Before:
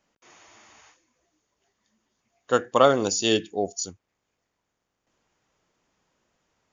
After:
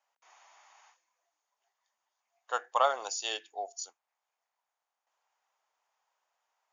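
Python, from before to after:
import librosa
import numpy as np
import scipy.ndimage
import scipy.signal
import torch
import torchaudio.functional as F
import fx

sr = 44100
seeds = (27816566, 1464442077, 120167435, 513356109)

y = fx.ladder_highpass(x, sr, hz=690.0, resonance_pct=50)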